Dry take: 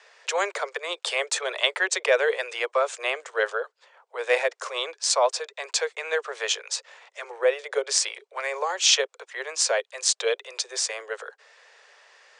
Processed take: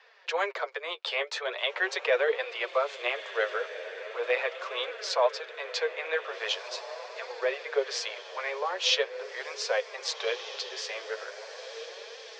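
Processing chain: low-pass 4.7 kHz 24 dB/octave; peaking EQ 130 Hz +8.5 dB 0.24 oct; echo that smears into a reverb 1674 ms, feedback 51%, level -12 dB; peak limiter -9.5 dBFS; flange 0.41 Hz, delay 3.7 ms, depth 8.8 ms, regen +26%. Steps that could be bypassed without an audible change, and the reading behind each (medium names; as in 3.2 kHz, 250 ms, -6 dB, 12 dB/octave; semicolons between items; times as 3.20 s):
peaking EQ 130 Hz: input has nothing below 340 Hz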